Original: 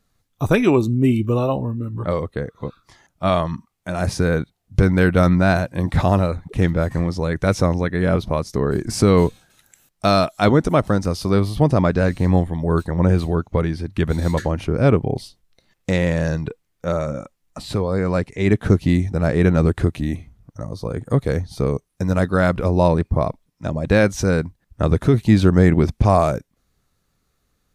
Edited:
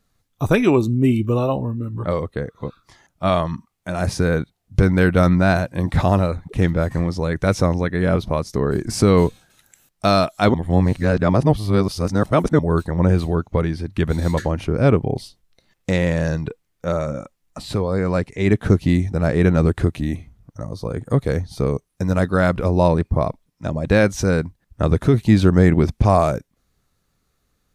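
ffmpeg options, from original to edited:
-filter_complex "[0:a]asplit=3[a][b][c];[a]atrim=end=10.542[d];[b]atrim=start=10.538:end=12.592,asetpts=PTS-STARTPTS,areverse[e];[c]atrim=start=12.588[f];[d][e]acrossfade=d=0.004:c1=hsin:c2=hsin[g];[g][f]acrossfade=d=0.004:c1=hsin:c2=hsin"

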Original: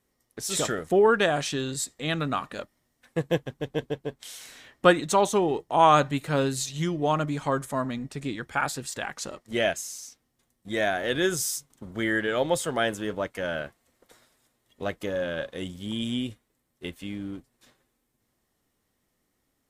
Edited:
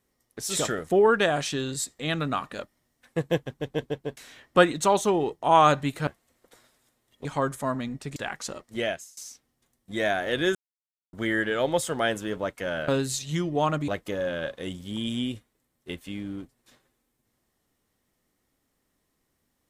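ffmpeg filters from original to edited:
-filter_complex "[0:a]asplit=10[a][b][c][d][e][f][g][h][i][j];[a]atrim=end=4.172[k];[b]atrim=start=4.448:end=6.352[l];[c]atrim=start=13.648:end=14.832[m];[d]atrim=start=7.348:end=8.262[n];[e]atrim=start=8.928:end=9.94,asetpts=PTS-STARTPTS,afade=t=out:st=0.522:d=0.49:silence=0.0707946[o];[f]atrim=start=9.94:end=11.32,asetpts=PTS-STARTPTS,afade=t=in:d=0.004:c=hsin:silence=0.0707946,afade=t=out:st=1.376:d=0.004:c=hsin[p];[g]atrim=start=11.32:end=11.9,asetpts=PTS-STARTPTS,volume=0[q];[h]atrim=start=11.9:end=13.652,asetpts=PTS-STARTPTS,afade=t=in:d=0.004:c=hsin[r];[i]atrim=start=6.348:end=7.352[s];[j]atrim=start=14.828[t];[k][l]acrossfade=d=0.004:c1=hsin:c2=hsin[u];[u][m]acrossfade=d=0.004:c1=hsin:c2=hsin[v];[v][n]acrossfade=d=0.004:c1=hsin:c2=hsin[w];[o][p][q][r]concat=n=4:v=0:a=1[x];[w][x]acrossfade=d=0.004:c1=hsin:c2=hsin[y];[y][s]acrossfade=d=0.004:c1=hsin:c2=hsin[z];[z][t]acrossfade=d=0.004:c1=hsin:c2=hsin"

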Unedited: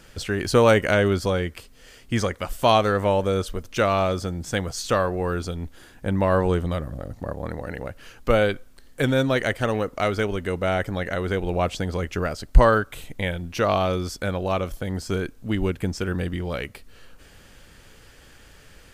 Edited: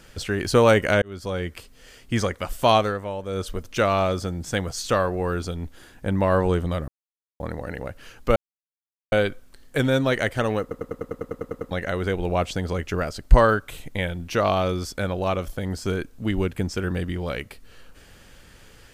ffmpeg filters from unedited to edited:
-filter_complex "[0:a]asplit=18[a][b][c][d][e][f][g][h][i][j][k][l][m][n][o][p][q][r];[a]atrim=end=1.02,asetpts=PTS-STARTPTS,afade=t=out:st=1.016:d=0.004:c=hsin[s];[b]atrim=start=1.02:end=3.01,asetpts=PTS-STARTPTS,afade=t=in:d=0.54,afade=t=out:st=1.75:d=0.24:silence=0.316228[t];[c]atrim=start=3.01:end=3.26,asetpts=PTS-STARTPTS,volume=-10dB[u];[d]atrim=start=3.26:end=6.88,asetpts=PTS-STARTPTS,afade=t=in:d=0.24:silence=0.316228,afade=t=out:st=3.616:d=0.004:c=hsin[v];[e]atrim=start=6.88:end=7.4,asetpts=PTS-STARTPTS,volume=0[w];[f]atrim=start=7.4:end=8.36,asetpts=PTS-STARTPTS,afade=t=in:d=0.004:c=hsin,afade=t=out:st=0.956:d=0.004:c=hsin,apad=pad_dur=0.76[x];[g]atrim=start=8.36:end=9.952,asetpts=PTS-STARTPTS,afade=t=in:d=0.004:c=hsin[y];[h]atrim=start=9.848:end=9.952[z];[i]atrim=start=9.848:end=9.952[aa];[j]atrim=start=9.848:end=9.952[ab];[k]atrim=start=9.848:end=9.952[ac];[l]atrim=start=9.848:end=9.952[ad];[m]atrim=start=9.848:end=9.952[ae];[n]atrim=start=9.848:end=9.952[af];[o]atrim=start=9.848:end=9.952[ag];[p]atrim=start=9.848:end=9.952[ah];[q]atrim=start=9.848:end=9.952[ai];[r]atrim=start=10.948[aj];[s][t][u][v][w][x][y]concat=n=7:v=0:a=1[ak];[ak][z]acrossfade=d=0.004:c1=hsin:c2=hsin[al];[al][aa]acrossfade=d=0.004:c1=hsin:c2=hsin[am];[am][ab]acrossfade=d=0.004:c1=hsin:c2=hsin[an];[an][ac]acrossfade=d=0.004:c1=hsin:c2=hsin[ao];[ao][ad]acrossfade=d=0.004:c1=hsin:c2=hsin[ap];[ap][ae]acrossfade=d=0.004:c1=hsin:c2=hsin[aq];[aq][af]acrossfade=d=0.004:c1=hsin:c2=hsin[ar];[ar][ag]acrossfade=d=0.004:c1=hsin:c2=hsin[as];[as][ah]acrossfade=d=0.004:c1=hsin:c2=hsin[at];[at][ai]acrossfade=d=0.004:c1=hsin:c2=hsin[au];[au][aj]acrossfade=d=0.004:c1=hsin:c2=hsin"

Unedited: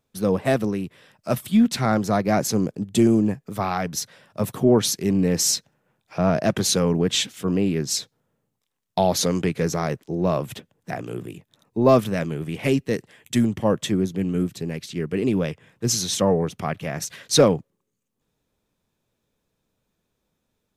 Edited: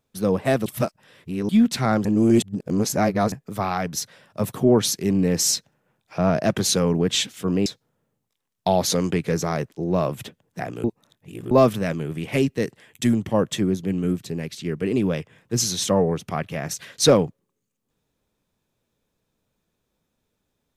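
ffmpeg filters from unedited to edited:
-filter_complex "[0:a]asplit=8[a][b][c][d][e][f][g][h];[a]atrim=end=0.662[i];[b]atrim=start=0.658:end=1.492,asetpts=PTS-STARTPTS,areverse[j];[c]atrim=start=1.488:end=2.052[k];[d]atrim=start=2.048:end=3.322,asetpts=PTS-STARTPTS,areverse[l];[e]atrim=start=3.318:end=7.662[m];[f]atrim=start=7.968:end=11.152[n];[g]atrim=start=11.148:end=11.822,asetpts=PTS-STARTPTS,areverse[o];[h]atrim=start=11.818[p];[i][j]acrossfade=d=0.004:c1=hsin:c2=hsin[q];[q][k]acrossfade=d=0.004:c1=hsin:c2=hsin[r];[r][l]acrossfade=d=0.004:c1=hsin:c2=hsin[s];[s][m]acrossfade=d=0.004:c1=hsin:c2=hsin[t];[t][n]acrossfade=d=0.004:c1=hsin:c2=hsin[u];[u][o]acrossfade=d=0.004:c1=hsin:c2=hsin[v];[v][p]acrossfade=d=0.004:c1=hsin:c2=hsin"

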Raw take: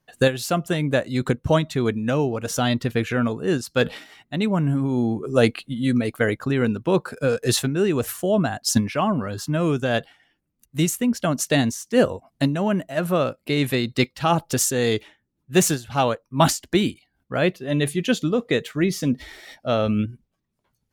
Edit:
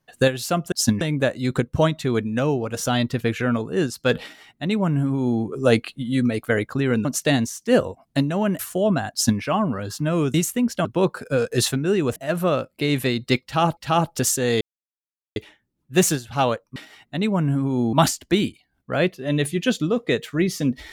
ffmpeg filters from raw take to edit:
-filter_complex "[0:a]asplit=12[a][b][c][d][e][f][g][h][i][j][k][l];[a]atrim=end=0.722[m];[b]atrim=start=8.598:end=8.892[n];[c]atrim=start=0.718:end=6.762[o];[d]atrim=start=11.298:end=12.842[p];[e]atrim=start=8.068:end=9.822[q];[f]atrim=start=10.788:end=11.302[r];[g]atrim=start=6.758:end=8.072[s];[h]atrim=start=12.838:end=14.452[t];[i]atrim=start=14.108:end=14.95,asetpts=PTS-STARTPTS,afade=t=out:st=0.838:d=0.004:c=hsin,apad=pad_dur=0.75[u];[j]atrim=start=14.95:end=16.352,asetpts=PTS-STARTPTS,afade=t=in:d=0.004:c=hsin[v];[k]atrim=start=3.948:end=5.122[w];[l]atrim=start=16.348[x];[m][n]acrossfade=d=0.004:c1=hsin:c2=hsin[y];[y][o]acrossfade=d=0.004:c1=hsin:c2=hsin[z];[z][p]acrossfade=d=0.004:c1=hsin:c2=hsin[aa];[aa][q]acrossfade=d=0.004:c1=hsin:c2=hsin[ab];[ab][r]acrossfade=d=0.004:c1=hsin:c2=hsin[ac];[ac][s]acrossfade=d=0.004:c1=hsin:c2=hsin[ad];[ad][t]acrossfade=d=0.004:c1=hsin:c2=hsin[ae];[u][v]concat=n=2:v=0:a=1[af];[ae][af]acrossfade=d=0.004:c1=hsin:c2=hsin[ag];[ag][w]acrossfade=d=0.004:c1=hsin:c2=hsin[ah];[ah][x]acrossfade=d=0.004:c1=hsin:c2=hsin"

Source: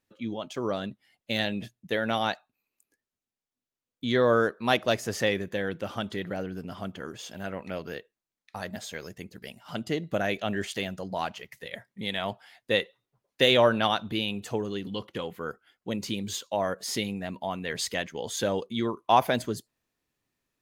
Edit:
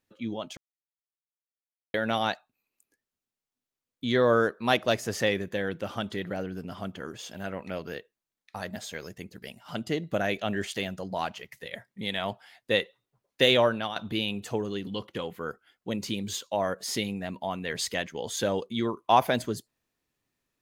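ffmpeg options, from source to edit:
-filter_complex "[0:a]asplit=4[a][b][c][d];[a]atrim=end=0.57,asetpts=PTS-STARTPTS,afade=t=out:st=0.566:d=0.004:c=hsin[e];[b]atrim=start=0.57:end=1.94,asetpts=PTS-STARTPTS,volume=0[f];[c]atrim=start=1.94:end=13.96,asetpts=PTS-STARTPTS,afade=t=in:d=0.004:c=hsin,afade=t=out:st=11.56:d=0.46:silence=0.251189[g];[d]atrim=start=13.96,asetpts=PTS-STARTPTS,afade=t=in:d=0.004:c=hsin:silence=0.251189[h];[e][f][g][h]concat=n=4:v=0:a=1"

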